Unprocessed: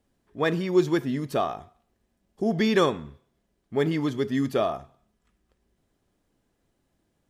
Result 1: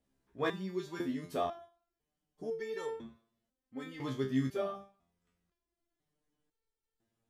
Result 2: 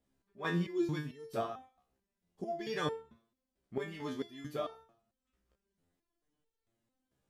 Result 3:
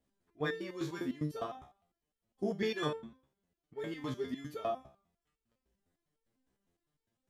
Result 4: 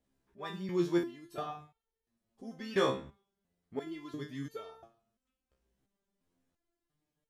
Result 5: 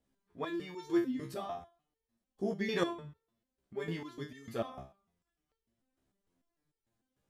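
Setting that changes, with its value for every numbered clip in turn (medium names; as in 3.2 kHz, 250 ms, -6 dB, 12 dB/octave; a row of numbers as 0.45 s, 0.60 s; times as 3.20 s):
resonator arpeggio, rate: 2 Hz, 4.5 Hz, 9.9 Hz, 2.9 Hz, 6.7 Hz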